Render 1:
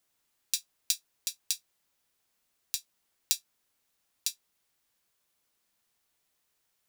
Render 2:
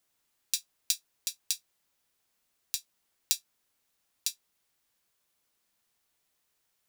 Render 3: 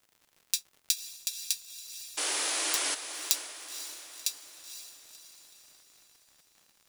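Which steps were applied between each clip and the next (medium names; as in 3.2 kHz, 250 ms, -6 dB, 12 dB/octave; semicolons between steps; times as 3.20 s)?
no audible change
painted sound noise, 2.17–2.95 s, 270–11000 Hz -32 dBFS; echo that smears into a reverb 509 ms, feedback 49%, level -9.5 dB; crackle 140 per s -48 dBFS; trim +1 dB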